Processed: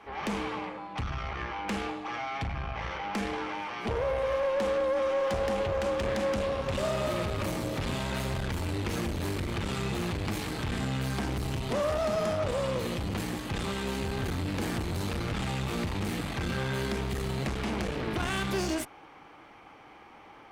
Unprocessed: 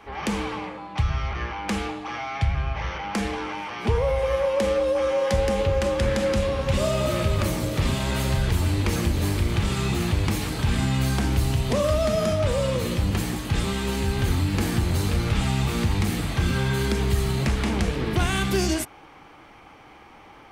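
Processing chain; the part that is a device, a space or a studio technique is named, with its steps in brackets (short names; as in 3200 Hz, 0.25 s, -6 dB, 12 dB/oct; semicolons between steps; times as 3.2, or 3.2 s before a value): tube preamp driven hard (tube stage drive 23 dB, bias 0.55; low shelf 140 Hz -8 dB; high shelf 4100 Hz -6 dB)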